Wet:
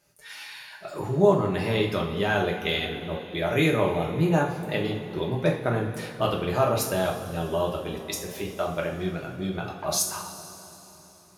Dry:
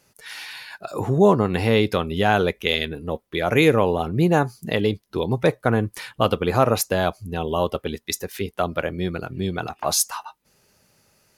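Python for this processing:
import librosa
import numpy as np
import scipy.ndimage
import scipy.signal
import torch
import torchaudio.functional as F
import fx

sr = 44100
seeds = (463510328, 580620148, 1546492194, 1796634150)

p1 = x + fx.echo_bbd(x, sr, ms=276, stages=1024, feedback_pct=71, wet_db=-18.0, dry=0)
p2 = fx.rev_double_slope(p1, sr, seeds[0], early_s=0.4, late_s=3.6, knee_db=-16, drr_db=-2.0)
y = p2 * 10.0 ** (-8.5 / 20.0)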